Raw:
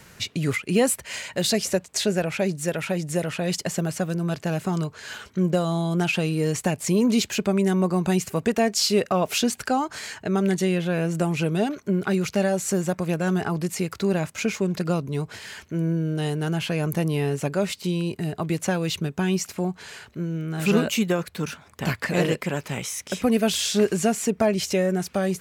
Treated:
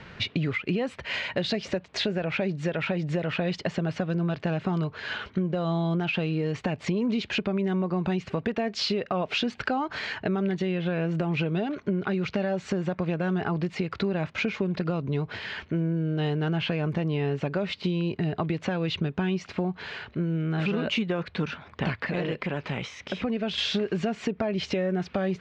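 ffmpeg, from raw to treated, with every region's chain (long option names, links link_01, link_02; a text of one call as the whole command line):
ffmpeg -i in.wav -filter_complex "[0:a]asettb=1/sr,asplit=3[link_01][link_02][link_03];[link_01]atrim=end=21.974[link_04];[link_02]atrim=start=21.97:end=23.58,asetpts=PTS-STARTPTS,afade=type=in:duration=0.004:curve=qsin,afade=type=out:start_time=1.606:duration=0.004:curve=qsin,equalizer=frequency=9800:width=5.2:gain=-6,acompressor=threshold=-34dB:ratio=2:attack=3.2:release=140:knee=1:detection=peak[link_05];[link_03]atrim=start=23.576[link_06];[link_04][link_05]acrossfade=duration=0.004:curve1=hsin:curve2=qsin[link_07];[link_07][link_06]acrossfade=duration=0.004:curve1=qsin:curve2=hsin,lowpass=frequency=3800:width=0.5412,lowpass=frequency=3800:width=1.3066,alimiter=limit=-17dB:level=0:latency=1:release=165,acompressor=threshold=-29dB:ratio=4,volume=4.5dB" out.wav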